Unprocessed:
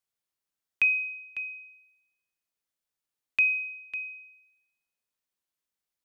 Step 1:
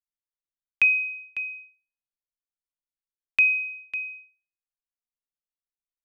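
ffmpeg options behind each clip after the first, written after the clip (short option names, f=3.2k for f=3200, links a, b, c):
-af "anlmdn=0.398,volume=4dB"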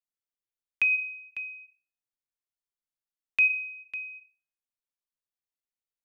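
-af "flanger=delay=7.3:depth=1.2:regen=84:speed=0.46:shape=triangular"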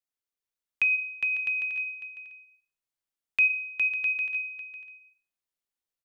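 -af "aecho=1:1:410|656|803.6|892.2|945.3:0.631|0.398|0.251|0.158|0.1"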